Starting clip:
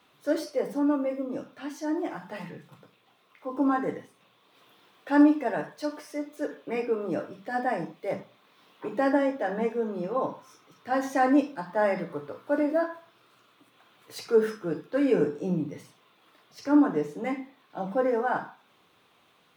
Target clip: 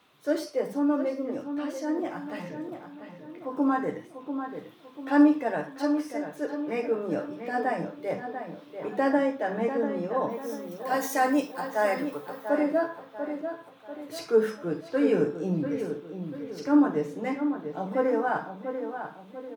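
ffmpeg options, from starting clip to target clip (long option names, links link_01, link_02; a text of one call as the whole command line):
ffmpeg -i in.wav -filter_complex "[0:a]asplit=3[link_01][link_02][link_03];[link_01]afade=type=out:start_time=10.29:duration=0.02[link_04];[link_02]aemphasis=mode=production:type=bsi,afade=type=in:start_time=10.29:duration=0.02,afade=type=out:start_time=12.48:duration=0.02[link_05];[link_03]afade=type=in:start_time=12.48:duration=0.02[link_06];[link_04][link_05][link_06]amix=inputs=3:normalize=0,asplit=2[link_07][link_08];[link_08]adelay=692,lowpass=frequency=2400:poles=1,volume=-8dB,asplit=2[link_09][link_10];[link_10]adelay=692,lowpass=frequency=2400:poles=1,volume=0.45,asplit=2[link_11][link_12];[link_12]adelay=692,lowpass=frequency=2400:poles=1,volume=0.45,asplit=2[link_13][link_14];[link_14]adelay=692,lowpass=frequency=2400:poles=1,volume=0.45,asplit=2[link_15][link_16];[link_16]adelay=692,lowpass=frequency=2400:poles=1,volume=0.45[link_17];[link_07][link_09][link_11][link_13][link_15][link_17]amix=inputs=6:normalize=0" out.wav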